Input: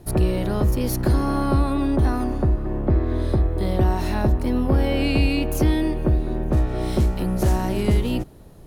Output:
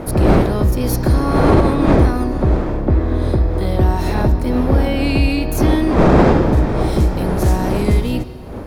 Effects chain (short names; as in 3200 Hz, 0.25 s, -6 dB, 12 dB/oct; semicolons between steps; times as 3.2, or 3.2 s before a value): wind noise 470 Hz -21 dBFS; notch 2900 Hz, Q 15; on a send at -13.5 dB: resonant high shelf 7300 Hz -13 dB, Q 3 + reverb RT60 2.2 s, pre-delay 3 ms; on the sum: maximiser +5 dB; gain -1 dB